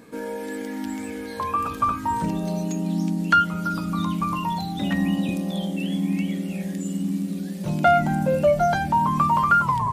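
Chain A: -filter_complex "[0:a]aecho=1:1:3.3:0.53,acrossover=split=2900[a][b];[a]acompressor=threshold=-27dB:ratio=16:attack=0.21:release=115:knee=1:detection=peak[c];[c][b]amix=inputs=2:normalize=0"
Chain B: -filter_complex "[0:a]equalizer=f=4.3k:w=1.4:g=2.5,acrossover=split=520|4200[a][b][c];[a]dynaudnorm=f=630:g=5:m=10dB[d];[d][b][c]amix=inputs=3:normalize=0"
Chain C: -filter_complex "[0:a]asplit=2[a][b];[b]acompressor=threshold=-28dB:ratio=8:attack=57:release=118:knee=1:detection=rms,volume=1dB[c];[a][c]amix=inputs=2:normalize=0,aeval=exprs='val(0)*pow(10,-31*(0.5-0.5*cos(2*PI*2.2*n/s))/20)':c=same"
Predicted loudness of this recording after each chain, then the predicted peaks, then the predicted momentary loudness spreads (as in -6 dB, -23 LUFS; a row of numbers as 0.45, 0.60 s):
-32.0, -17.0, -26.5 LUFS; -18.0, -2.0, -6.5 dBFS; 2, 15, 9 LU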